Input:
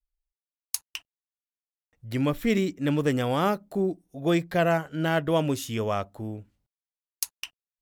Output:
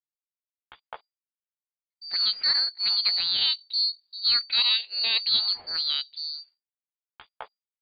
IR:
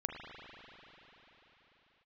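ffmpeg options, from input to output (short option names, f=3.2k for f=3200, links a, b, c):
-af "agate=range=-33dB:threshold=-49dB:ratio=3:detection=peak,lowpass=f=2.9k:t=q:w=0.5098,lowpass=f=2.9k:t=q:w=0.6013,lowpass=f=2.9k:t=q:w=0.9,lowpass=f=2.9k:t=q:w=2.563,afreqshift=-3400,asetrate=62367,aresample=44100,atempo=0.707107"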